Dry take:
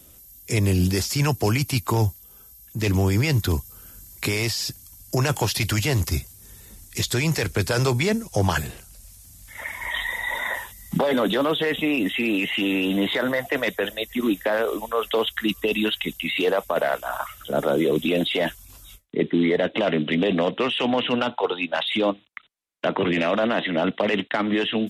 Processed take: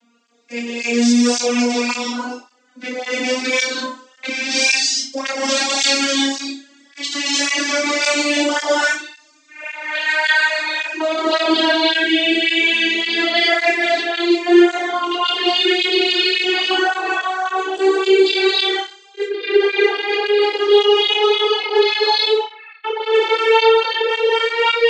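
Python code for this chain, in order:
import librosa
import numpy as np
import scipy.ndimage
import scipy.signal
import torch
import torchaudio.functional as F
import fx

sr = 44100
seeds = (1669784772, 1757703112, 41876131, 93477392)

p1 = fx.vocoder_glide(x, sr, note=58, semitones=12)
p2 = fx.high_shelf(p1, sr, hz=2600.0, db=7.5)
p3 = p2 + fx.room_flutter(p2, sr, wall_m=5.0, rt60_s=0.41, dry=0)
p4 = fx.rev_gated(p3, sr, seeds[0], gate_ms=360, shape='rising', drr_db=-4.5)
p5 = fx.rider(p4, sr, range_db=4, speed_s=2.0)
p6 = p4 + (p5 * librosa.db_to_amplitude(1.0))
p7 = scipy.signal.sosfilt(scipy.signal.butter(2, 300.0, 'highpass', fs=sr, output='sos'), p6)
p8 = fx.tilt_eq(p7, sr, slope=2.5)
p9 = fx.env_lowpass(p8, sr, base_hz=2200.0, full_db=-6.5)
p10 = fx.flanger_cancel(p9, sr, hz=1.8, depth_ms=2.7)
y = p10 * librosa.db_to_amplitude(-1.0)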